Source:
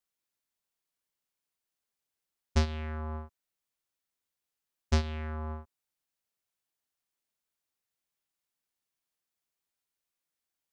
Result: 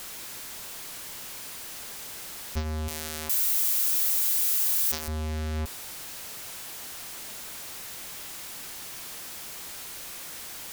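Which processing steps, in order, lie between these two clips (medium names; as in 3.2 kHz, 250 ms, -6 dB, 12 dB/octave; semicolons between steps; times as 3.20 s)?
power-law waveshaper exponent 0.35; in parallel at -11.5 dB: sine folder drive 14 dB, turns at -14.5 dBFS; 2.88–5.08 s: on the sum: RIAA curve recording; trim -7.5 dB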